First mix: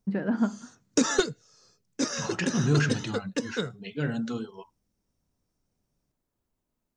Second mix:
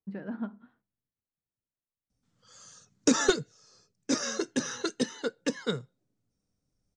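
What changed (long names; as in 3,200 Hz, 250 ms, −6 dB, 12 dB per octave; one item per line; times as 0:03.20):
first voice −10.0 dB
second voice: muted
background: entry +2.10 s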